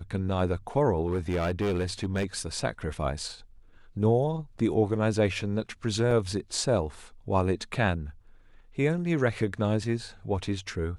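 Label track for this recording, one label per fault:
1.060000	2.250000	clipped -23.5 dBFS
6.110000	6.110000	gap 3.7 ms

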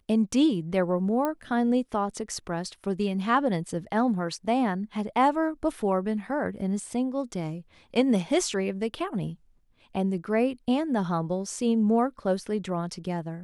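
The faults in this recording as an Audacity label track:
1.250000	1.250000	pop -15 dBFS

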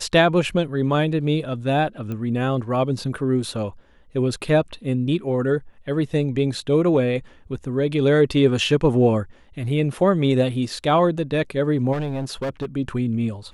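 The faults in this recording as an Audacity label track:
2.120000	2.120000	pop -19 dBFS
11.920000	12.660000	clipped -22 dBFS

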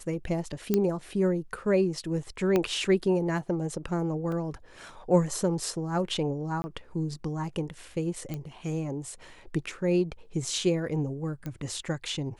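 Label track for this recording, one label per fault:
0.740000	0.740000	pop -11 dBFS
2.560000	2.560000	pop -12 dBFS
4.320000	4.320000	gap 2.5 ms
6.620000	6.640000	gap 20 ms
8.340000	8.340000	pop -21 dBFS
11.460000	11.460000	pop -23 dBFS

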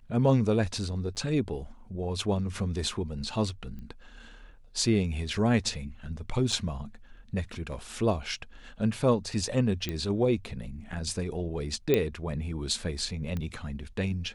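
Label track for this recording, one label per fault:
1.150000	1.160000	gap 9.1 ms
3.790000	3.790000	pop -32 dBFS
6.520000	6.520000	gap 4.5 ms
9.890000	9.890000	pop -17 dBFS
11.940000	11.940000	pop -11 dBFS
13.370000	13.370000	pop -21 dBFS

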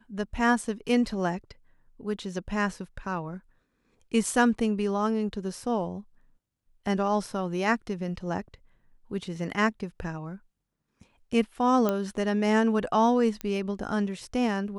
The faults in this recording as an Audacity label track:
11.890000	11.890000	pop -13 dBFS
13.410000	13.410000	pop -18 dBFS

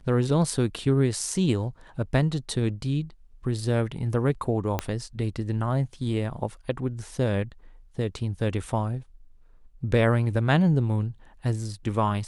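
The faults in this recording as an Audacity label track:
4.790000	4.790000	pop -11 dBFS

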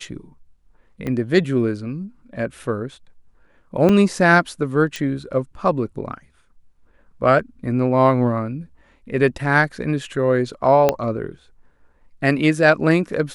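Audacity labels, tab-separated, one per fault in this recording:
1.070000	1.070000	pop -15 dBFS
3.890000	3.890000	gap 4.3 ms
4.960000	4.960000	pop
10.890000	10.890000	pop -3 dBFS

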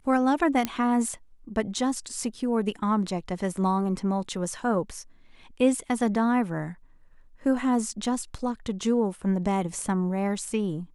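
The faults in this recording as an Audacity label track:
0.650000	0.650000	pop -11 dBFS

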